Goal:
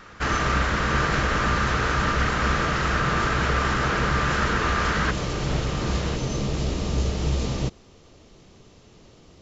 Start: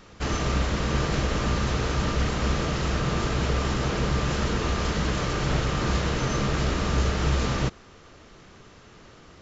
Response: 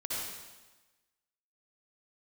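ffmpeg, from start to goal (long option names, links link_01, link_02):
-af "asetnsamples=nb_out_samples=441:pad=0,asendcmd='5.11 equalizer g -3.5;6.16 equalizer g -11',equalizer=frequency=1500:width_type=o:width=1.2:gain=11"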